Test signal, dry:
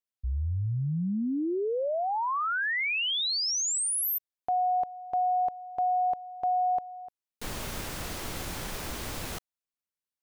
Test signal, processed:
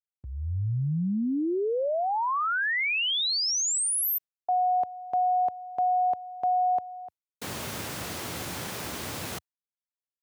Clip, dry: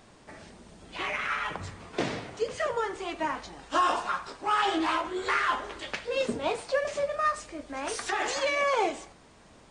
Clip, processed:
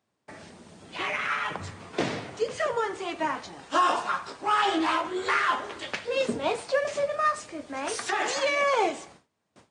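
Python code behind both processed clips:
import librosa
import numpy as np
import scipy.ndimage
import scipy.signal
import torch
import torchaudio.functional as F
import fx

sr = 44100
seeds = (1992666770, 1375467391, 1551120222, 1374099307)

y = fx.gate_hold(x, sr, open_db=-43.0, close_db=-48.0, hold_ms=30.0, range_db=-25, attack_ms=3.3, release_ms=124.0)
y = scipy.signal.sosfilt(scipy.signal.butter(4, 84.0, 'highpass', fs=sr, output='sos'), y)
y = y * librosa.db_to_amplitude(2.0)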